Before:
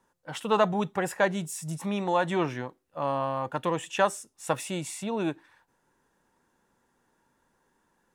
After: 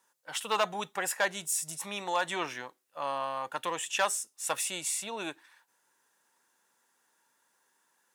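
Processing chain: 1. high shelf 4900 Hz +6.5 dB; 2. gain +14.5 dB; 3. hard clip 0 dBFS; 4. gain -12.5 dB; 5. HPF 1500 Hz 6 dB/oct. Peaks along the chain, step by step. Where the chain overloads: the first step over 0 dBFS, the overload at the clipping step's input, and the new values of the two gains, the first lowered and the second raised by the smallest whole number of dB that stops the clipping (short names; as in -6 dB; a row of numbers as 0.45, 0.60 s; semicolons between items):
-9.5, +5.0, 0.0, -12.5, -13.5 dBFS; step 2, 5.0 dB; step 2 +9.5 dB, step 4 -7.5 dB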